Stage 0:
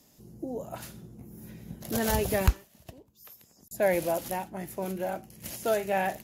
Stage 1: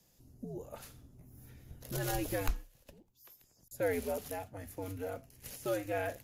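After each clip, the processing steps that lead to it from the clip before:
mains-hum notches 60/120/180 Hz
frequency shifter −91 Hz
level −7.5 dB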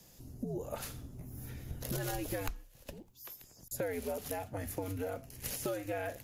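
downward compressor 6 to 1, threshold −44 dBFS, peak gain reduction 19 dB
level +9.5 dB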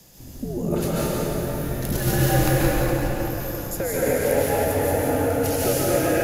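on a send: echo with a time of its own for lows and highs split 760 Hz, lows 286 ms, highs 173 ms, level −5.5 dB
on the sum: dense smooth reverb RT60 4.1 s, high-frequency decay 0.45×, pre-delay 120 ms, DRR −7.5 dB
level +8 dB

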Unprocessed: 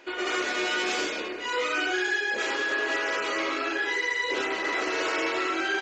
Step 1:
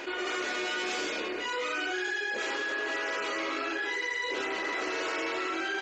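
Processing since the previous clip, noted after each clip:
envelope flattener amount 70%
level −7 dB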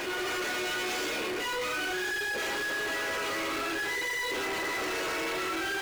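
power curve on the samples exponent 0.35
level −6 dB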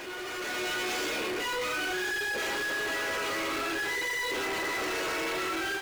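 automatic gain control gain up to 6.5 dB
level −6 dB

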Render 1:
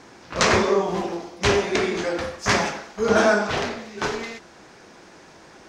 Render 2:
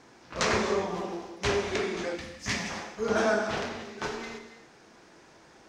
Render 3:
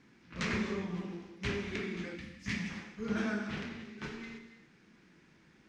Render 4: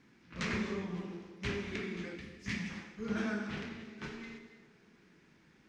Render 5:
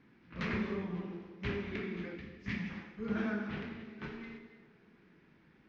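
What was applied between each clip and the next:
reverb whose tail is shaped and stops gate 310 ms flat, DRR 7 dB; gain on a spectral selection 0:02.15–0:02.70, 310–1,700 Hz −9 dB; level −8.5 dB
drawn EQ curve 120 Hz 0 dB, 180 Hz +7 dB, 670 Hz −15 dB, 2,200 Hz 0 dB, 6,100 Hz −10 dB; level −4.5 dB
delay with a band-pass on its return 204 ms, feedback 65%, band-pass 500 Hz, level −16 dB; level −1.5 dB
high-frequency loss of the air 240 metres; level +1 dB

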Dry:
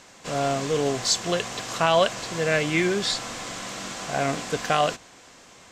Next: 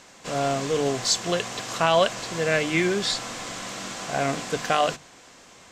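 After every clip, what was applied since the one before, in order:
mains-hum notches 50/100/150 Hz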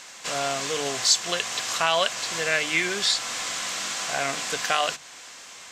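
tilt shelving filter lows −8.5 dB, about 700 Hz
in parallel at +2 dB: downward compressor, threshold −29 dBFS, peak gain reduction 18 dB
on the sum: level −6.5 dB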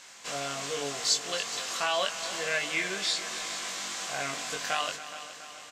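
double-tracking delay 21 ms −3.5 dB
on a send: echo machine with several playback heads 140 ms, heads second and third, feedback 59%, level −14.5 dB
on the sum: level −8 dB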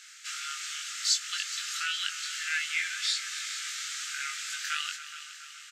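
linear-phase brick-wall high-pass 1,200 Hz

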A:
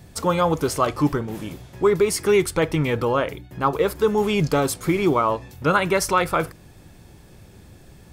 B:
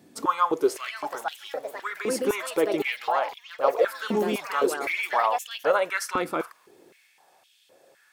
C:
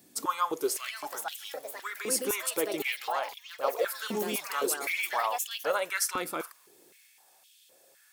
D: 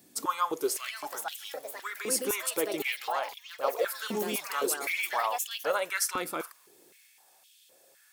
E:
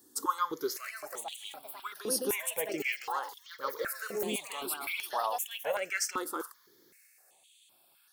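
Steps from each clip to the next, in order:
delay with pitch and tempo change per echo 623 ms, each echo +4 semitones, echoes 3, each echo −6 dB; high-pass on a step sequencer 3.9 Hz 270–3,100 Hz; level −8.5 dB
first-order pre-emphasis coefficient 0.8; level +6 dB
no processing that can be heard
step-sequenced phaser 2.6 Hz 640–7,500 Hz

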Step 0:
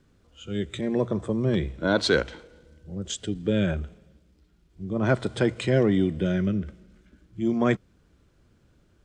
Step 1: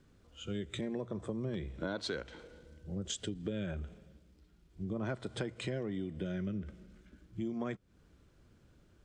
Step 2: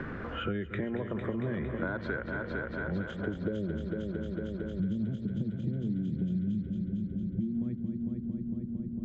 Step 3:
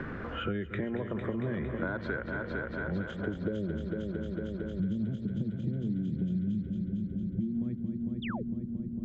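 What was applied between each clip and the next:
downward compressor 8 to 1, threshold −32 dBFS, peak gain reduction 16 dB; level −2.5 dB
low-pass filter sweep 1,700 Hz → 200 Hz, 0:03.02–0:03.90; echo machine with several playback heads 227 ms, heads first and second, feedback 65%, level −10.5 dB; multiband upward and downward compressor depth 100%; level +2 dB
sound drawn into the spectrogram fall, 0:08.22–0:08.43, 360–3,800 Hz −41 dBFS

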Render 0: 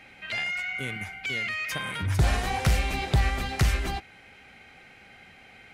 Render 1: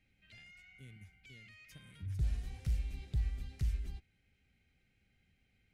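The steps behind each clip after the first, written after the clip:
guitar amp tone stack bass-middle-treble 10-0-1
level −2.5 dB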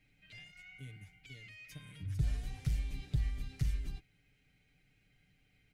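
comb filter 6.8 ms
level +2.5 dB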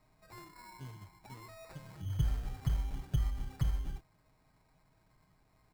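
decimation without filtering 14×
level +1.5 dB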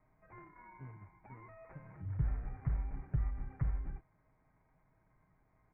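Butterworth low-pass 2,300 Hz 72 dB per octave
level −2.5 dB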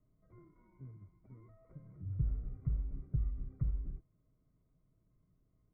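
moving average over 52 samples

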